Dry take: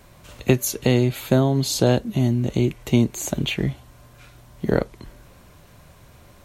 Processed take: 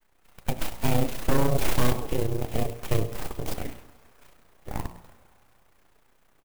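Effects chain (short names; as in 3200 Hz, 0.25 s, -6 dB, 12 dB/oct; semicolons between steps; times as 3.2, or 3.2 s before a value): Doppler pass-by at 1.77, 10 m/s, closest 2.6 m; AGC gain up to 12.5 dB; low shelf 340 Hz -11 dB; feedback echo 96 ms, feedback 40%, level -17 dB; full-wave rectifier; grains 50 ms, grains 30/s, spray 13 ms, pitch spread up and down by 0 st; in parallel at -9 dB: sine folder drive 9 dB, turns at -7 dBFS; on the sum: LPF 3300 Hz 6 dB/oct; de-hum 57.94 Hz, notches 23; on a send at -19.5 dB: reverb RT60 2.9 s, pre-delay 6 ms; on the sum: dynamic EQ 1400 Hz, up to -7 dB, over -43 dBFS, Q 1.1; clock jitter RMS 0.05 ms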